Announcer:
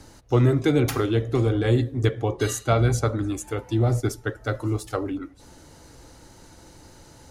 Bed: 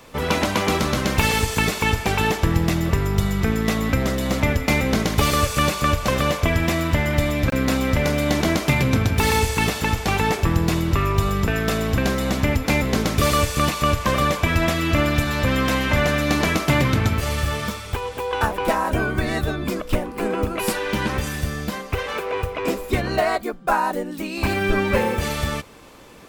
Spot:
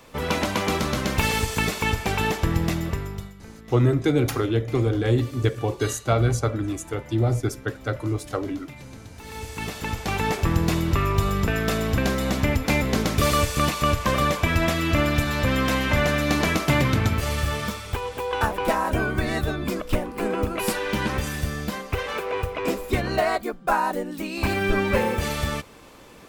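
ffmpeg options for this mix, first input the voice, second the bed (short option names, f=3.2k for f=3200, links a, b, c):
-filter_complex "[0:a]adelay=3400,volume=-0.5dB[a];[1:a]volume=18dB,afade=t=out:st=2.67:d=0.67:silence=0.1,afade=t=in:st=9.24:d=1.31:silence=0.0841395[b];[a][b]amix=inputs=2:normalize=0"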